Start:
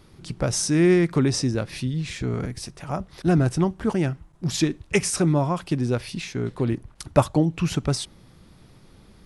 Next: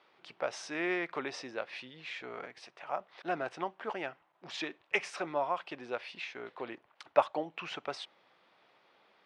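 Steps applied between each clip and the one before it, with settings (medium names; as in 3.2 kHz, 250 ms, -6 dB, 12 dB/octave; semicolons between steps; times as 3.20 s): Chebyshev band-pass 650–2900 Hz, order 2; trim -4 dB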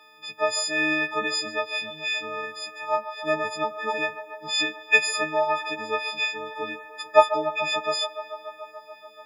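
partials quantised in pitch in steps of 6 st; feedback echo behind a band-pass 144 ms, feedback 81%, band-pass 960 Hz, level -11 dB; trim +6 dB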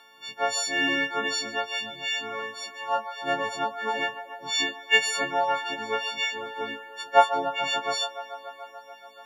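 partials quantised in pitch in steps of 4 st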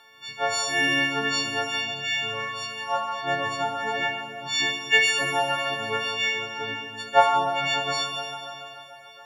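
resonant low shelf 160 Hz +8.5 dB, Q 1.5; Schroeder reverb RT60 2.7 s, combs from 28 ms, DRR 2 dB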